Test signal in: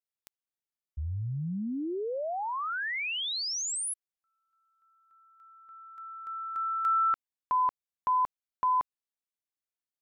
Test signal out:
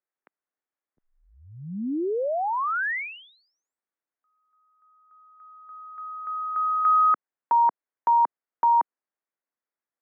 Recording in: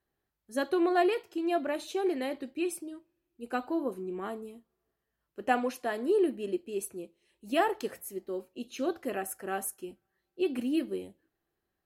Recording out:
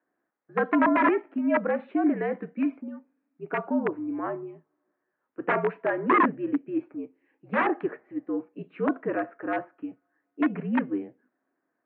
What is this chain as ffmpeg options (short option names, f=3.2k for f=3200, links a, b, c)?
-af "aeval=exprs='(mod(11.2*val(0)+1,2)-1)/11.2':c=same,highpass=f=310:t=q:w=0.5412,highpass=f=310:t=q:w=1.307,lowpass=f=2.1k:t=q:w=0.5176,lowpass=f=2.1k:t=q:w=0.7071,lowpass=f=2.1k:t=q:w=1.932,afreqshift=-72,volume=7dB"